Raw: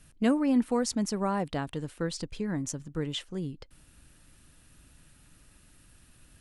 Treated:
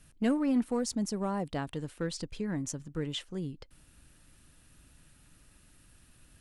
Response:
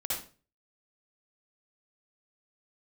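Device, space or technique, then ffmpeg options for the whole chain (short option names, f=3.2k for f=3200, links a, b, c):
parallel distortion: -filter_complex "[0:a]asplit=2[a][b];[b]asoftclip=type=hard:threshold=-24.5dB,volume=-6dB[c];[a][c]amix=inputs=2:normalize=0,asettb=1/sr,asplit=3[d][e][f];[d]atrim=end=0.644[g];[e]atrim=start=0.64:end=1.55,asetpts=PTS-STARTPTS,afade=t=in:d=0.004:c=qsin,afade=t=out:st=0.906:d=0.004:c=qsin,equalizer=f=1.9k:w=0.56:g=-5[h];[f]atrim=start=1.546[i];[g][h]acrossfade=d=0.004:c1=hsin:c2=qsin[j];[j][i]acrossfade=d=0.004:c1=qsin:c2=hsin,volume=-5.5dB"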